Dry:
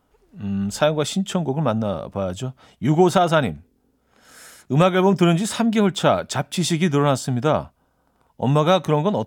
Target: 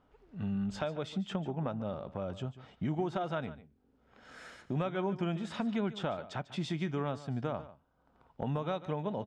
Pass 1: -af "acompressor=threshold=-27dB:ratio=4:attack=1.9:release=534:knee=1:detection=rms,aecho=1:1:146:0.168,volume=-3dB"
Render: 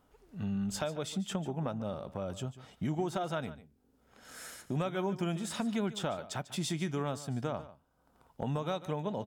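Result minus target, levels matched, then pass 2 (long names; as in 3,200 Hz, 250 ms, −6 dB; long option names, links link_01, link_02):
4,000 Hz band +3.5 dB
-af "acompressor=threshold=-27dB:ratio=4:attack=1.9:release=534:knee=1:detection=rms,lowpass=3400,aecho=1:1:146:0.168,volume=-3dB"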